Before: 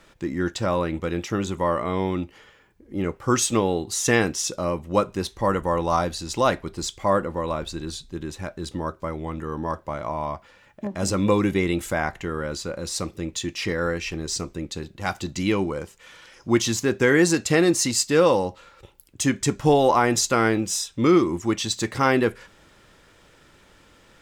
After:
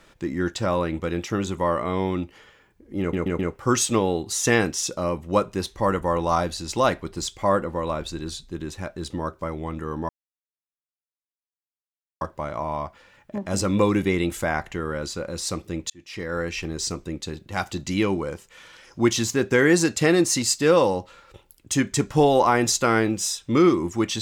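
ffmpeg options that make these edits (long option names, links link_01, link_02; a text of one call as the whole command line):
ffmpeg -i in.wav -filter_complex "[0:a]asplit=6[link_01][link_02][link_03][link_04][link_05][link_06];[link_01]atrim=end=3.132[link_07];[link_02]atrim=start=2.998:end=3.132[link_08];[link_03]atrim=start=2.998:end=3.132[link_09];[link_04]atrim=start=2.998:end=9.7,asetpts=PTS-STARTPTS,afade=type=out:start_time=6.698:duration=0.004:curve=hsin,apad=pad_dur=2.12[link_10];[link_05]atrim=start=9.7:end=13.39,asetpts=PTS-STARTPTS,afade=type=in:duration=0.004:curve=hsin,afade=type=out:start_time=3.686:duration=0.004:curve=hsin[link_11];[link_06]atrim=start=13.39,asetpts=PTS-STARTPTS,afade=type=in:duration=0.64[link_12];[link_07][link_08]acrossfade=duration=0.004:curve1=hsin:curve2=hsin[link_13];[link_13][link_09]acrossfade=duration=0.004:curve1=hsin:curve2=hsin[link_14];[link_10][link_11][link_12]concat=n=3:v=0:a=1[link_15];[link_14][link_15]acrossfade=duration=0.004:curve1=hsin:curve2=hsin" out.wav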